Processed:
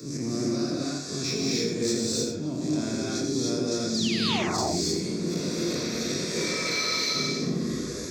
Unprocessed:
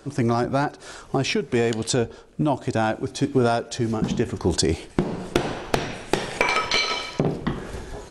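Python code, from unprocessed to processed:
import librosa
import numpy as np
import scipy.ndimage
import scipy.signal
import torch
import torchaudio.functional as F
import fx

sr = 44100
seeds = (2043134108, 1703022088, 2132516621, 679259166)

p1 = fx.spec_blur(x, sr, span_ms=84.0)
p2 = fx.fixed_phaser(p1, sr, hz=3000.0, stages=6)
p3 = fx.over_compress(p2, sr, threshold_db=-32.0, ratio=-1.0)
p4 = p2 + (p3 * librosa.db_to_amplitude(-2.0))
p5 = fx.high_shelf(p4, sr, hz=4300.0, db=11.0)
p6 = fx.spec_paint(p5, sr, seeds[0], shape='fall', start_s=3.94, length_s=0.49, low_hz=570.0, high_hz=5200.0, level_db=-22.0)
p7 = fx.peak_eq(p6, sr, hz=1600.0, db=-12.5, octaves=1.0)
p8 = 10.0 ** (-14.5 / 20.0) * np.tanh(p7 / 10.0 ** (-14.5 / 20.0))
p9 = scipy.signal.sosfilt(scipy.signal.butter(2, 160.0, 'highpass', fs=sr, output='sos'), p8)
p10 = p9 + fx.echo_single(p9, sr, ms=85, db=-8.0, dry=0)
p11 = fx.rev_gated(p10, sr, seeds[1], gate_ms=330, shape='rising', drr_db=-4.5)
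p12 = fx.band_squash(p11, sr, depth_pct=40)
y = p12 * librosa.db_to_amplitude(-7.5)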